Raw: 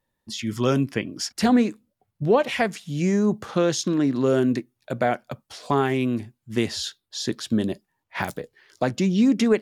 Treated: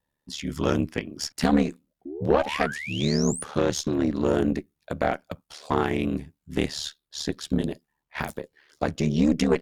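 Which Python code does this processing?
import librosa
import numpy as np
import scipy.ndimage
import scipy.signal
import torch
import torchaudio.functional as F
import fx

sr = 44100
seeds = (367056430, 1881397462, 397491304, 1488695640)

y = fx.spec_paint(x, sr, seeds[0], shape='rise', start_s=2.05, length_s=1.39, low_hz=290.0, high_hz=10000.0, level_db=-32.0)
y = y * np.sin(2.0 * np.pi * 37.0 * np.arange(len(y)) / sr)
y = fx.cheby_harmonics(y, sr, harmonics=(4,), levels_db=(-18,), full_scale_db=-8.0)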